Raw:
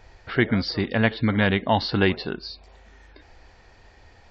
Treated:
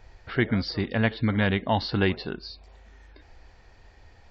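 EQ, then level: bass shelf 110 Hz +5.5 dB; -4.0 dB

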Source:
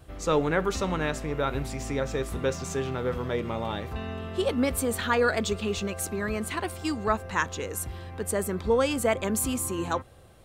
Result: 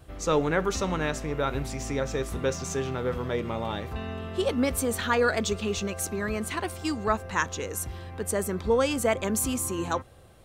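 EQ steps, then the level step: dynamic bell 6 kHz, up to +5 dB, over -55 dBFS, Q 3.7; 0.0 dB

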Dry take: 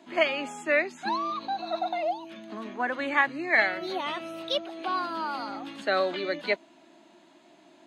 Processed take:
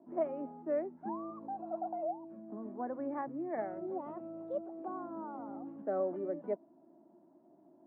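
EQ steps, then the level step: Bessel low-pass 560 Hz, order 4; -3.5 dB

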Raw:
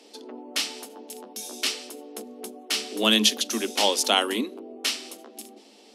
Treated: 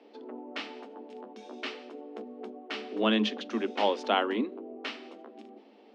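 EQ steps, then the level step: band-pass 120–2000 Hz; distance through air 78 m; -1.5 dB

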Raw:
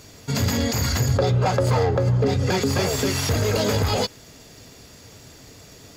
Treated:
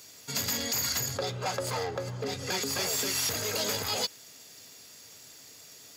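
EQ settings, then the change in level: high-pass 85 Hz; tilt EQ +3 dB/octave; -9.0 dB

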